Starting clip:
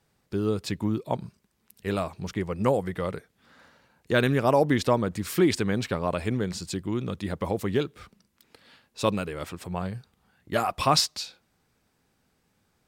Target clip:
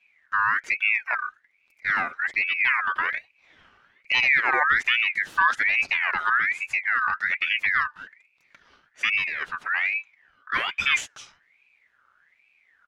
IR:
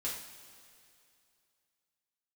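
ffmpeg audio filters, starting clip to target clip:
-filter_complex "[0:a]aemphasis=mode=reproduction:type=riaa,aecho=1:1:6.3:0.41,asplit=2[s0][s1];[s1]alimiter=limit=0.211:level=0:latency=1,volume=1.33[s2];[s0][s2]amix=inputs=2:normalize=0,aeval=exprs='val(0)*sin(2*PI*1900*n/s+1900*0.3/1.2*sin(2*PI*1.2*n/s))':c=same,volume=0.422"

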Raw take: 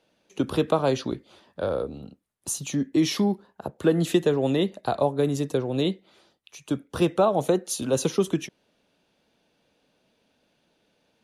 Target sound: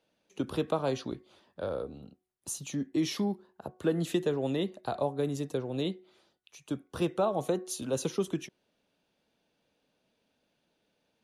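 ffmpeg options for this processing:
-af "bandreject=f=368.1:t=h:w=4,bandreject=f=736.2:t=h:w=4,bandreject=f=1104.3:t=h:w=4,bandreject=f=1472.4:t=h:w=4,volume=0.422"

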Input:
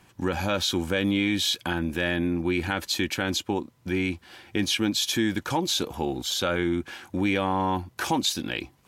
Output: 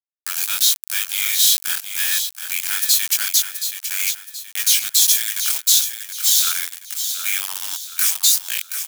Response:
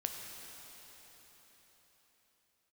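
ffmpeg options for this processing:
-filter_complex "[0:a]highpass=f=1500:w=0.5412,highpass=f=1500:w=1.3066,equalizer=f=2800:w=0.59:g=-9,asplit=2[s0][s1];[s1]acompressor=threshold=0.02:ratio=6,volume=1.19[s2];[s0][s2]amix=inputs=2:normalize=0,flanger=delay=18.5:depth=6.1:speed=0.97,acrusher=bits=5:mix=0:aa=0.000001,crystalizer=i=9.5:c=0,asplit=2[s3][s4];[s4]aecho=0:1:725|1450|2175|2900:0.376|0.147|0.0572|0.0223[s5];[s3][s5]amix=inputs=2:normalize=0,volume=0.794"

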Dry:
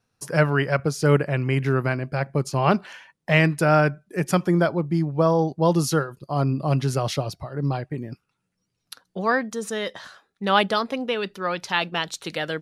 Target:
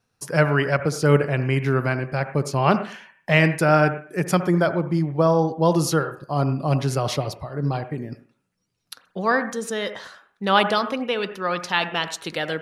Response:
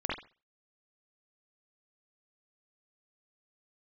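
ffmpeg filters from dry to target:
-filter_complex "[0:a]asplit=2[s0][s1];[1:a]atrim=start_sample=2205,asetrate=31311,aresample=44100,lowshelf=f=220:g=-12[s2];[s1][s2]afir=irnorm=-1:irlink=0,volume=0.15[s3];[s0][s3]amix=inputs=2:normalize=0"

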